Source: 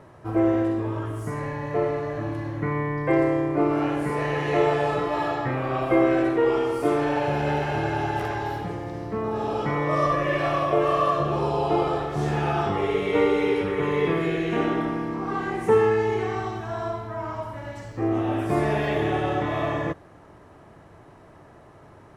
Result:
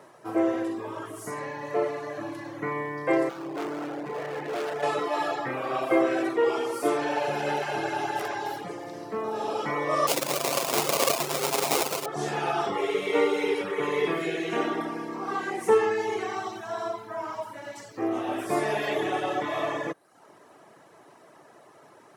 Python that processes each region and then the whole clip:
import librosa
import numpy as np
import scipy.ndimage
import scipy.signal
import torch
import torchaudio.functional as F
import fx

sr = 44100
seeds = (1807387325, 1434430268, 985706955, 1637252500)

y = fx.chain(x, sr, fx.lowpass(hz=1400.0, slope=12),
    fx.peak_eq(hz=1100.0, db=-7.5, octaves=0.54),
    fx.clip_hard(threshold_db=-26.0), at=(3.29, 4.83))
y = fx.chain(y, sr, fx.lower_of_two(delay_ms=7.6),
    fx.lowpass(hz=4000.0, slope=12),
    fx.sample_hold(seeds[0], rate_hz=1700.0, jitter_pct=20), at=(10.07, 12.06))
y = fx.dereverb_blind(y, sr, rt60_s=0.62)
y = scipy.signal.sosfilt(scipy.signal.butter(4, 130.0, 'highpass', fs=sr, output='sos'), y)
y = fx.bass_treble(y, sr, bass_db=-11, treble_db=8)